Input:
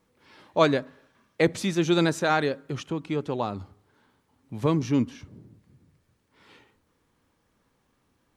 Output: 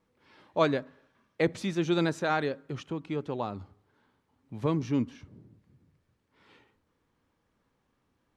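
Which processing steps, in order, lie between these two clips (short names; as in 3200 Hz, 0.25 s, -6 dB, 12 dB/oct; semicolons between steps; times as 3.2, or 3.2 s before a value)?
high shelf 6700 Hz -10 dB; gain -4.5 dB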